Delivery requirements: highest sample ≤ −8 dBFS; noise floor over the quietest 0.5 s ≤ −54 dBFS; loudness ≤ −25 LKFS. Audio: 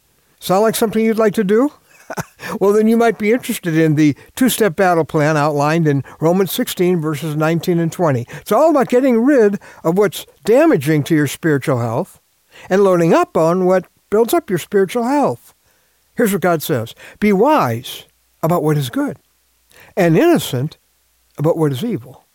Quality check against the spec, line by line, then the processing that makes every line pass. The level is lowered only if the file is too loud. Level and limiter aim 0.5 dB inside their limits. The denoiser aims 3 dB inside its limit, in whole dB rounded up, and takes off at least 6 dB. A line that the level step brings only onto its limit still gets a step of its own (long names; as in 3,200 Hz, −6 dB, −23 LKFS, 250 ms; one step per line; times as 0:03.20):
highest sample −5.0 dBFS: out of spec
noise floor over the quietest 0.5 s −59 dBFS: in spec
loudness −15.5 LKFS: out of spec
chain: level −10 dB